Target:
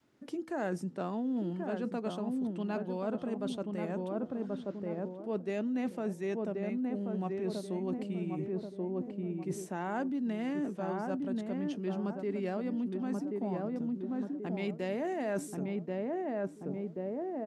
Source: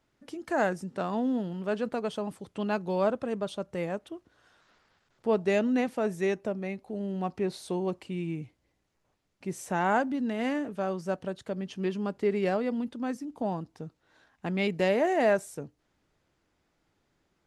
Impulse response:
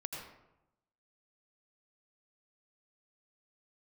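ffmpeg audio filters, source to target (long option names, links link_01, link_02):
-filter_complex "[0:a]equalizer=frequency=290:width=0.73:gain=7.5,asplit=2[link_01][link_02];[link_02]adelay=1083,lowpass=frequency=1000:poles=1,volume=-4dB,asplit=2[link_03][link_04];[link_04]adelay=1083,lowpass=frequency=1000:poles=1,volume=0.39,asplit=2[link_05][link_06];[link_06]adelay=1083,lowpass=frequency=1000:poles=1,volume=0.39,asplit=2[link_07][link_08];[link_08]adelay=1083,lowpass=frequency=1000:poles=1,volume=0.39,asplit=2[link_09][link_10];[link_10]adelay=1083,lowpass=frequency=1000:poles=1,volume=0.39[link_11];[link_03][link_05][link_07][link_09][link_11]amix=inputs=5:normalize=0[link_12];[link_01][link_12]amix=inputs=2:normalize=0,adynamicequalizer=threshold=0.0141:dfrequency=470:dqfactor=1.6:tfrequency=470:tqfactor=1.6:attack=5:release=100:ratio=0.375:range=2:mode=cutabove:tftype=bell,areverse,acompressor=threshold=-32dB:ratio=6,areverse,highpass=90,bandreject=frequency=162.5:width_type=h:width=4,bandreject=frequency=325:width_type=h:width=4,bandreject=frequency=487.5:width_type=h:width=4"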